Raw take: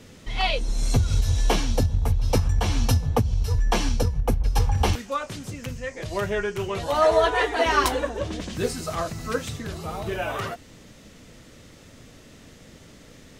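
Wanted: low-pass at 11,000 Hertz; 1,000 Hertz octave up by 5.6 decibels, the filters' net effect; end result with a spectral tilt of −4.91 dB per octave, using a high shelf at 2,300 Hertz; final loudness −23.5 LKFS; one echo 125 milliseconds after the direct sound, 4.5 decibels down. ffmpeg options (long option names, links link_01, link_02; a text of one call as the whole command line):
ffmpeg -i in.wav -af "lowpass=11000,equalizer=frequency=1000:width_type=o:gain=8,highshelf=frequency=2300:gain=-5,aecho=1:1:125:0.596,volume=-1.5dB" out.wav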